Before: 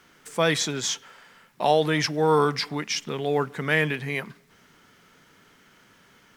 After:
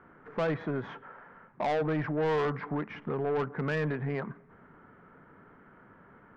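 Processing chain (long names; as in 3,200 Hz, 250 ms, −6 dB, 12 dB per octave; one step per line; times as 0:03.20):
low-pass filter 1,500 Hz 24 dB per octave
in parallel at +1 dB: downward compressor, threshold −33 dBFS, peak gain reduction 16.5 dB
on the sum: soft clipping −21.5 dBFS, distortion −8 dB
level −3 dB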